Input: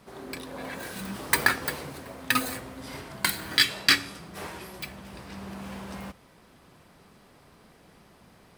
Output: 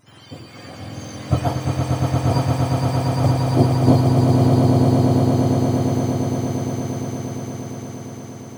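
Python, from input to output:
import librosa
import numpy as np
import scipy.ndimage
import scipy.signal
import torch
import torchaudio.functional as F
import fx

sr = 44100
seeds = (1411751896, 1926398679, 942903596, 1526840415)

y = fx.octave_mirror(x, sr, pivot_hz=1100.0)
y = fx.echo_swell(y, sr, ms=116, loudest=8, wet_db=-4.5)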